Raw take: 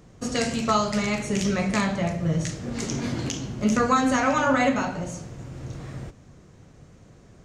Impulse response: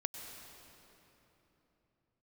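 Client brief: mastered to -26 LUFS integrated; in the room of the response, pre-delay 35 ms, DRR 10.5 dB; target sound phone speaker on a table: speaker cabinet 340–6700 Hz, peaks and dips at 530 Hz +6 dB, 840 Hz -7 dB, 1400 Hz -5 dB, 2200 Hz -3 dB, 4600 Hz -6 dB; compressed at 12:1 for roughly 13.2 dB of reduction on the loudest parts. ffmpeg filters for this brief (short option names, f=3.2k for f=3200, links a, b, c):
-filter_complex "[0:a]acompressor=threshold=-30dB:ratio=12,asplit=2[a][b];[1:a]atrim=start_sample=2205,adelay=35[c];[b][c]afir=irnorm=-1:irlink=0,volume=-10.5dB[d];[a][d]amix=inputs=2:normalize=0,highpass=f=340:w=0.5412,highpass=f=340:w=1.3066,equalizer=f=530:t=q:w=4:g=6,equalizer=f=840:t=q:w=4:g=-7,equalizer=f=1.4k:t=q:w=4:g=-5,equalizer=f=2.2k:t=q:w=4:g=-3,equalizer=f=4.6k:t=q:w=4:g=-6,lowpass=f=6.7k:w=0.5412,lowpass=f=6.7k:w=1.3066,volume=12dB"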